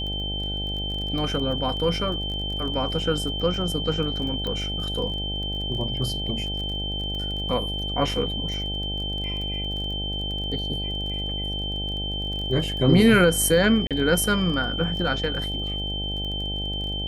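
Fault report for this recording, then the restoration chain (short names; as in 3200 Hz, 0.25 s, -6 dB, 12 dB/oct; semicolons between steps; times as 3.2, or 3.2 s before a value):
buzz 50 Hz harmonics 17 -31 dBFS
crackle 22/s -32 dBFS
tone 3100 Hz -29 dBFS
4.47 pop -18 dBFS
13.87–13.91 gap 37 ms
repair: de-click; de-hum 50 Hz, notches 17; notch 3100 Hz, Q 30; interpolate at 13.87, 37 ms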